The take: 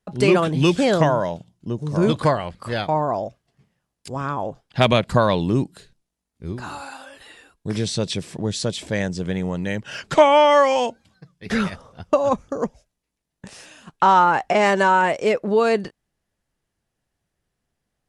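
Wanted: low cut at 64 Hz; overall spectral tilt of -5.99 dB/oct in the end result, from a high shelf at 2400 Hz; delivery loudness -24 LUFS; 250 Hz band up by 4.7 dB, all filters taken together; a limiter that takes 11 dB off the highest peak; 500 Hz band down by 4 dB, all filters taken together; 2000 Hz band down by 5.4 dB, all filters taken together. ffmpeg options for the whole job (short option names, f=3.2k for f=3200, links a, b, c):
-af "highpass=64,equalizer=f=250:t=o:g=8.5,equalizer=f=500:t=o:g=-7,equalizer=f=2k:t=o:g=-5.5,highshelf=f=2.4k:g=-3,volume=1.5dB,alimiter=limit=-14dB:level=0:latency=1"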